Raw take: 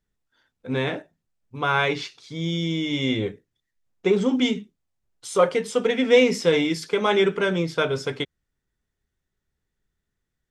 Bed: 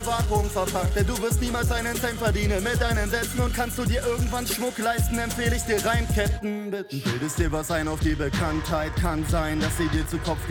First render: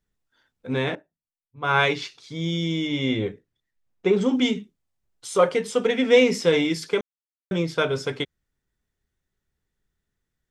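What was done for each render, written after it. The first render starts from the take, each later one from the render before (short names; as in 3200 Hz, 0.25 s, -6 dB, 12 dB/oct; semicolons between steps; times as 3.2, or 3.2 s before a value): 0.95–2.02 three-band expander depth 100%; 2.87–4.21 high shelf 6100 Hz -9 dB; 7.01–7.51 mute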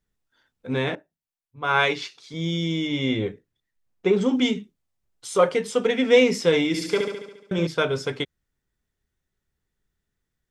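1.63–2.34 HPF 220 Hz 6 dB/oct; 6.67–7.67 flutter echo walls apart 12 m, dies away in 0.91 s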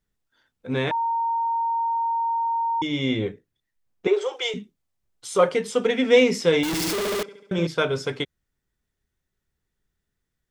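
0.91–2.82 bleep 922 Hz -21 dBFS; 4.07–4.54 steep high-pass 360 Hz 96 dB/oct; 6.63–7.23 infinite clipping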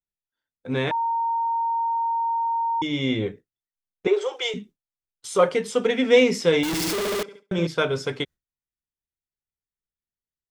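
gate with hold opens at -34 dBFS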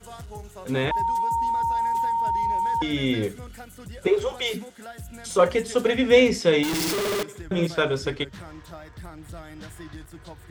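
add bed -16 dB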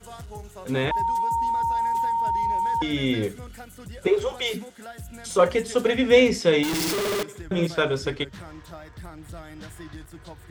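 nothing audible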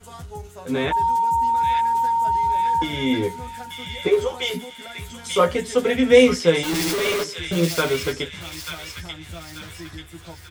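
doubler 12 ms -3 dB; thin delay 0.888 s, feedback 44%, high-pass 2100 Hz, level -3 dB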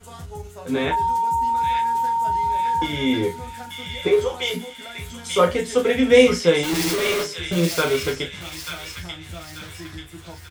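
doubler 34 ms -8 dB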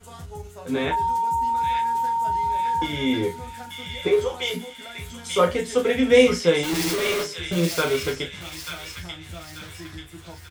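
gain -2 dB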